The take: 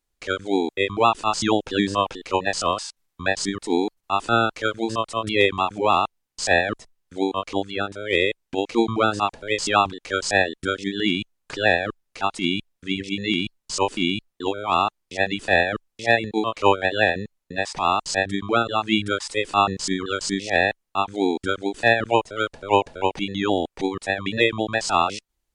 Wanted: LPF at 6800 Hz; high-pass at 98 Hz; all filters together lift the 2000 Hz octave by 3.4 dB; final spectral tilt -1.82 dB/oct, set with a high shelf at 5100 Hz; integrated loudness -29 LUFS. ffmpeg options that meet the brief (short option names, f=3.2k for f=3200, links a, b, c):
-af "highpass=98,lowpass=6.8k,equalizer=f=2k:t=o:g=5,highshelf=f=5.1k:g=-5,volume=-7.5dB"